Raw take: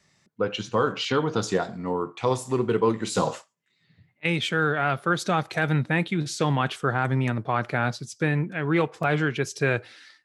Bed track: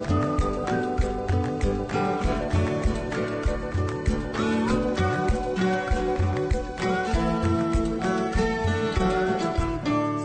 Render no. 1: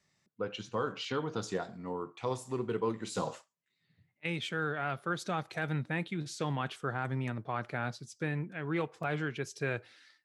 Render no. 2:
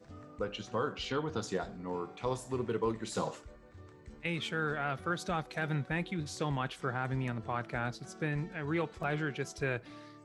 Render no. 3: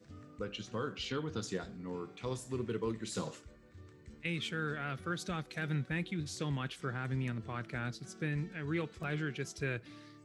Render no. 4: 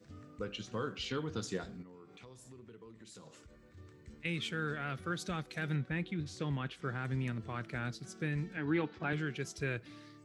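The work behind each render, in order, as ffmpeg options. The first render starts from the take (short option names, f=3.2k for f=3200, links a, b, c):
-af "volume=-10.5dB"
-filter_complex "[1:a]volume=-27dB[a];[0:a][a]amix=inputs=2:normalize=0"
-af "highpass=59,equalizer=f=790:t=o:w=1.3:g=-11"
-filter_complex "[0:a]asettb=1/sr,asplit=3[a][b][c];[a]atrim=end=1.824[d];[b]atrim=start=1.82:end=3.77,asetpts=PTS-STARTPTS,afade=t=in:d=0.004:c=qsin,afade=t=out:st=1.946:d=0.004:c=qsin,acompressor=threshold=-52dB:ratio=5:attack=3.2:release=140:knee=1:detection=peak[e];[c]atrim=start=3.766[f];[d][e]acrossfade=d=0.004:c1=hsin:c2=qsin[g];[g][f]acrossfade=d=0.004:c1=qsin:c2=hsin,asettb=1/sr,asplit=3[h][i][j];[h]atrim=end=5.764[k];[i]atrim=start=5.76:end=6.85,asetpts=PTS-STARTPTS,afade=t=in:d=0.004:c=qsin,afade=t=out:st=1.086:d=0.004:c=qsin,aemphasis=mode=reproduction:type=50kf[l];[j]atrim=start=6.846[m];[k][l]acrossfade=d=0.004:c1=hsin:c2=qsin[n];[n][m]acrossfade=d=0.004:c1=qsin:c2=hsin,asettb=1/sr,asplit=3[o][p][q];[o]atrim=end=8.574[r];[p]atrim=start=8.57:end=9.13,asetpts=PTS-STARTPTS,afade=t=in:d=0.004:c=qsin,afade=t=out:st=0.556:d=0.004:c=qsin,highpass=110,equalizer=f=290:t=q:w=4:g=9,equalizer=f=840:t=q:w=4:g=10,equalizer=f=1.6k:t=q:w=4:g=5,lowpass=f=4.9k:w=0.5412,lowpass=f=4.9k:w=1.3066[s];[q]atrim=start=9.126[t];[r][s]acrossfade=d=0.004:c1=hsin:c2=qsin[u];[u][t]acrossfade=d=0.004:c1=qsin:c2=hsin"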